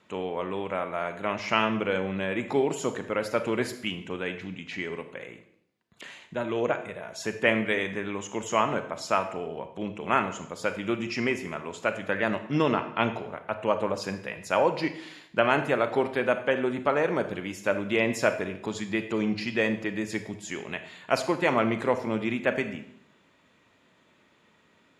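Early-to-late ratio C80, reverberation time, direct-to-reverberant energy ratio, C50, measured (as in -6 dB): 13.5 dB, 0.70 s, 9.0 dB, 10.5 dB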